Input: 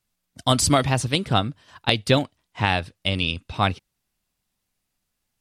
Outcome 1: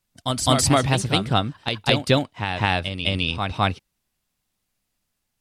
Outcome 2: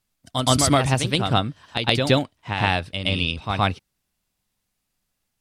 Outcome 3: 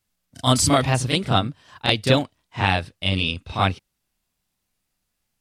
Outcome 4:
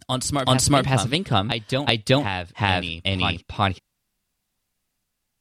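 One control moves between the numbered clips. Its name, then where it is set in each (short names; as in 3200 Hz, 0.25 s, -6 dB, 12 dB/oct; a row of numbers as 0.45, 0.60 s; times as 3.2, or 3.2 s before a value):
reverse echo, time: 209, 120, 32, 375 ms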